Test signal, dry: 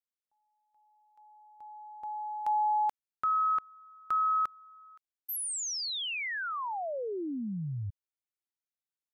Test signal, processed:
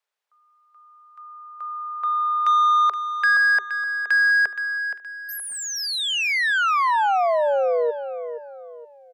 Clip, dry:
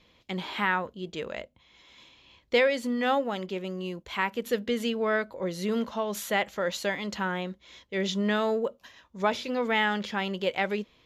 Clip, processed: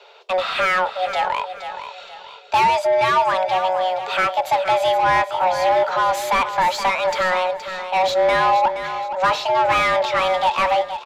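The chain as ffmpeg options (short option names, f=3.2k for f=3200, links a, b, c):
-filter_complex "[0:a]afreqshift=370,asplit=2[a][b];[b]highpass=f=720:p=1,volume=23dB,asoftclip=type=tanh:threshold=-10dB[c];[a][c]amix=inputs=2:normalize=0,lowpass=f=1.5k:p=1,volume=-6dB,aecho=1:1:471|942|1413|1884:0.316|0.111|0.0387|0.0136,volume=2.5dB"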